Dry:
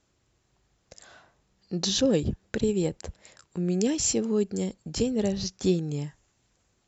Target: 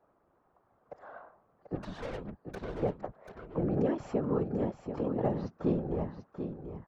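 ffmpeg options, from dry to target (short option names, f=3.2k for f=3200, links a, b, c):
-filter_complex "[0:a]highpass=f=88:w=0.5412,highpass=f=88:w=1.3066,equalizer=f=670:t=o:w=2.3:g=12.5,bandreject=f=910:w=15,acrossover=split=220|770[a][b][c];[b]acompressor=threshold=-30dB:ratio=4[d];[a][d][c]amix=inputs=3:normalize=0,lowpass=f=1.2k:t=q:w=1.8,asettb=1/sr,asplit=3[e][f][g];[e]atrim=end=1.754[h];[f]atrim=start=1.75:end=2.83,asetpts=PTS-STARTPTS,afade=t=in:d=0.004:c=qsin,afade=t=out:st=1.076:d=0.004:c=qsin,aeval=exprs='(tanh(39.8*val(0)+0.75)-tanh(0.75))/39.8':c=same[i];[g]atrim=start=2.826[j];[h][i]acrossfade=d=0.004:c1=hsin:c2=qsin[k];[k][j]acrossfade=d=0.004:c1=qsin:c2=hsin,asettb=1/sr,asplit=3[l][m][n];[l]atrim=end=4.774[o];[m]atrim=start=4.77:end=5.22,asetpts=PTS-STARTPTS,afade=t=in:d=0.004:c=qsin,afade=t=out:st=0.446:d=0.004:c=qsin,tremolo=f=43:d=0.75[p];[n]atrim=start=5.216[q];[o][p]acrossfade=d=0.004:c1=hsin:c2=qsin[r];[r][q]acrossfade=d=0.004:c1=qsin:c2=hsin,afftfilt=real='hypot(re,im)*cos(2*PI*random(0))':imag='hypot(re,im)*sin(2*PI*random(1))':win_size=512:overlap=0.75,aecho=1:1:738:0.376"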